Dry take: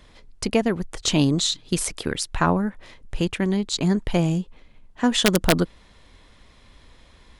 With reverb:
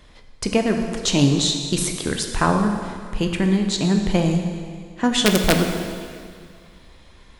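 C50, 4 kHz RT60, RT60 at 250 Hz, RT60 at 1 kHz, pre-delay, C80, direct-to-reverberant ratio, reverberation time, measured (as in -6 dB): 5.5 dB, 2.0 s, 2.1 s, 2.0 s, 6 ms, 6.5 dB, 3.5 dB, 2.1 s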